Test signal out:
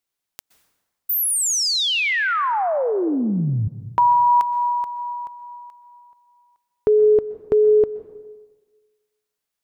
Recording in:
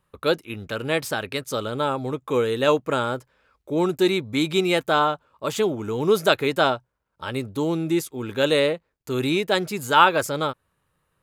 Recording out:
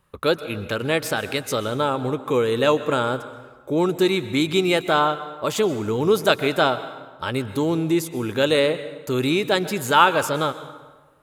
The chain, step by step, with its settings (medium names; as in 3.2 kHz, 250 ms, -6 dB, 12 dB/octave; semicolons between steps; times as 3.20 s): in parallel at +1 dB: compression, threshold -30 dBFS; on the sum: plate-style reverb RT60 1.3 s, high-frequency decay 0.7×, pre-delay 110 ms, DRR 13 dB; trim -1 dB